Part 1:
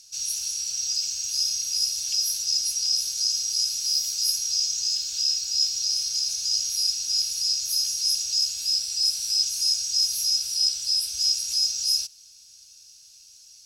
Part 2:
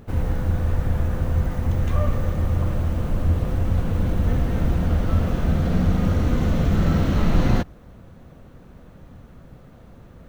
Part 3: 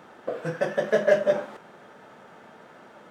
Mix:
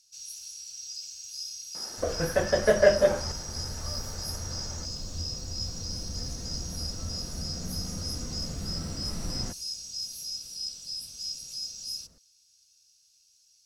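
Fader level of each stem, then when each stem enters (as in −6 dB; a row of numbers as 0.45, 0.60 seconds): −13.0, −17.0, +0.5 decibels; 0.00, 1.90, 1.75 seconds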